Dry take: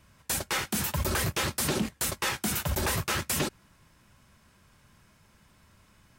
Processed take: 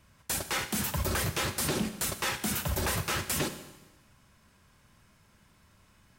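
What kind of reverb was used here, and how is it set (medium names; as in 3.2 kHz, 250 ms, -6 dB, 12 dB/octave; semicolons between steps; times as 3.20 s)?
Schroeder reverb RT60 1.1 s, combs from 33 ms, DRR 10 dB; trim -2 dB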